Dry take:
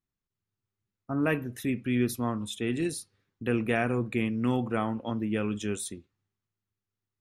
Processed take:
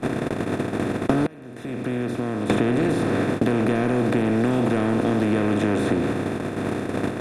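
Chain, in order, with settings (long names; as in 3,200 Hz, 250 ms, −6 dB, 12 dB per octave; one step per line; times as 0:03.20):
compressor on every frequency bin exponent 0.2
tilt shelving filter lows +5 dB, about 860 Hz
noise gate −27 dBFS, range −40 dB
downward compressor 2 to 1, threshold −22 dBFS, peak gain reduction 5.5 dB
0:01.26–0:02.50: gate with flip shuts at −24 dBFS, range −27 dB
in parallel at −3.5 dB: gain into a clipping stage and back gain 27 dB
on the sum: high-frequency loss of the air 51 metres
multiband upward and downward compressor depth 100%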